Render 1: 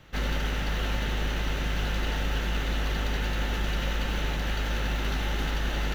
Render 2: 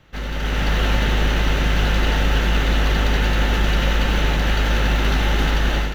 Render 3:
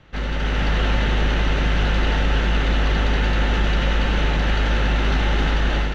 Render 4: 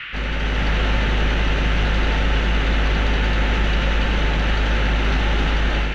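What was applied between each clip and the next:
treble shelf 5.4 kHz -4 dB; level rider gain up to 10.5 dB
in parallel at +2 dB: peak limiter -17.5 dBFS, peak gain reduction 10.5 dB; on the sum: distance through air 87 m; trim -4.5 dB
band noise 1.3–3 kHz -33 dBFS

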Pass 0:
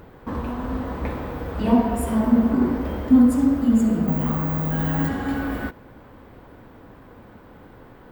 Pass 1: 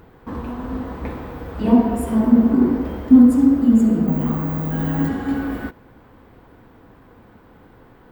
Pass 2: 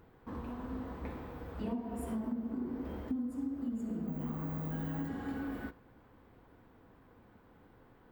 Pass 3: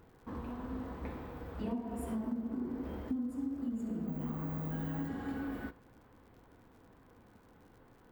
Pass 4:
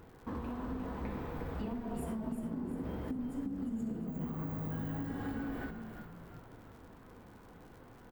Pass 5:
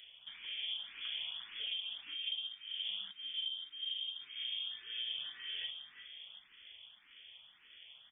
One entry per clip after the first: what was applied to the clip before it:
band-stop 580 Hz, Q 12; dynamic bell 300 Hz, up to +7 dB, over -30 dBFS, Q 0.73; trim -2 dB
flange 0.36 Hz, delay 8.4 ms, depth 3.8 ms, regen -84%; compression 12:1, threshold -25 dBFS, peak gain reduction 15.5 dB; trim -8.5 dB
crackle 79 per s -56 dBFS
compression, threshold -41 dBFS, peak gain reduction 9.5 dB; frequency-shifting echo 352 ms, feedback 47%, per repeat -53 Hz, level -7.5 dB; trim +5 dB
frequency inversion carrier 3.4 kHz; barber-pole phaser +1.8 Hz; trim -1 dB

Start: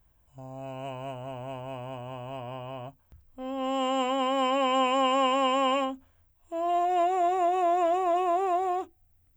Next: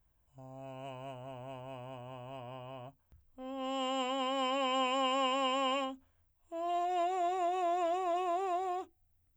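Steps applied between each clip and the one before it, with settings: dynamic bell 4.5 kHz, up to +8 dB, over -50 dBFS, Q 0.99; trim -8 dB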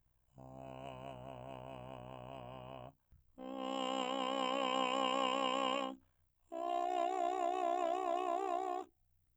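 AM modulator 63 Hz, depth 70%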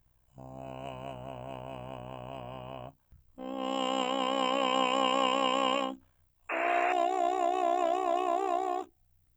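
painted sound noise, 6.49–6.93 s, 410–2800 Hz -41 dBFS; trim +7.5 dB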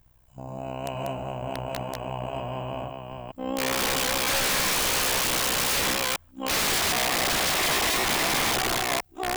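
chunks repeated in reverse 474 ms, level -4 dB; integer overflow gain 28 dB; trim +8.5 dB

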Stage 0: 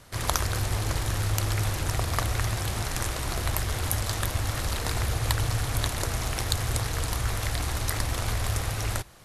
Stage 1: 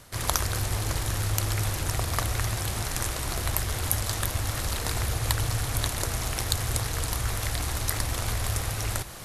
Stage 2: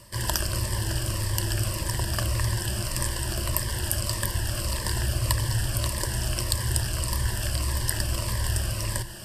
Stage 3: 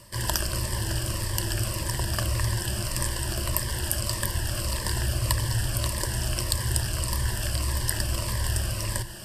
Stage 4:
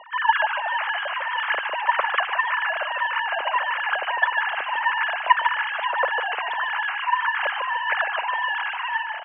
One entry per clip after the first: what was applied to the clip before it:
treble shelf 6.8 kHz +5.5 dB; reverse; upward compressor, threshold -29 dBFS; reverse; trim -1 dB
rippled EQ curve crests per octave 1.3, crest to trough 12 dB; Shepard-style phaser falling 1.7 Hz
hum notches 50/100 Hz
formants replaced by sine waves; three-band isolator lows -16 dB, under 230 Hz, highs -22 dB, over 2.6 kHz; frequency-shifting echo 149 ms, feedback 32%, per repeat -37 Hz, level -7 dB; trim +3.5 dB

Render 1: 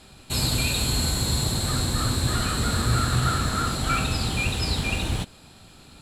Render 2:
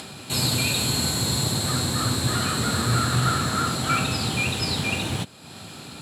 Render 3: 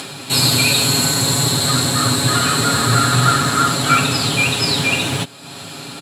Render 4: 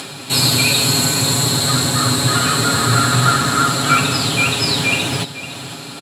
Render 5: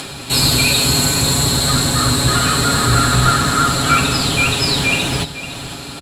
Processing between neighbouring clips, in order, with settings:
high-pass 100 Hz 24 dB/octave; upward compressor, threshold -32 dBFS; trim +2 dB
bass shelf 120 Hz -10.5 dB; comb 7.2 ms; trim +7.5 dB
delay 508 ms -13 dB
octave divider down 1 oct, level -5 dB; in parallel at -7 dB: saturation -12 dBFS, distortion -14 dB; on the sum: trim -2 dB

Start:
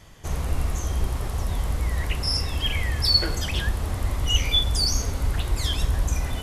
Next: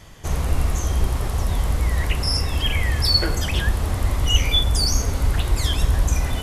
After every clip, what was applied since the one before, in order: dynamic bell 4.2 kHz, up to -4 dB, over -36 dBFS, Q 1.2; trim +4.5 dB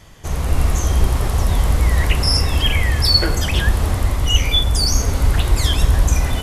level rider gain up to 7 dB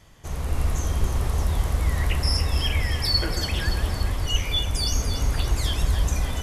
echo whose repeats swap between lows and highs 143 ms, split 2 kHz, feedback 78%, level -7.5 dB; trim -8.5 dB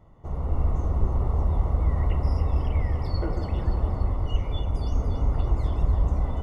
Savitzky-Golay filter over 65 samples

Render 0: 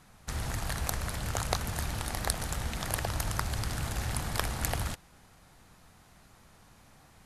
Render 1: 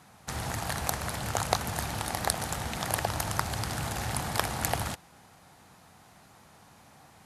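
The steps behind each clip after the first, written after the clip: high-pass 95 Hz 12 dB/octave; peaking EQ 800 Hz +4.5 dB 0.64 oct; trim +2.5 dB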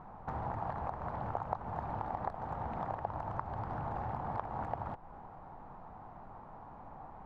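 compression 6:1, threshold -39 dBFS, peak gain reduction 18.5 dB; added noise brown -58 dBFS; resonant low-pass 940 Hz, resonance Q 2.3; trim +2 dB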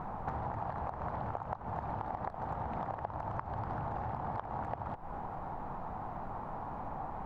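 compression 6:1, threshold -45 dBFS, peak gain reduction 16 dB; trim +10 dB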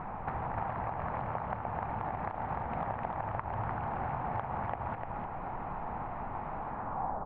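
low-pass sweep 2.4 kHz -> 590 Hz, 6.67–7.22 s; delay 299 ms -3 dB

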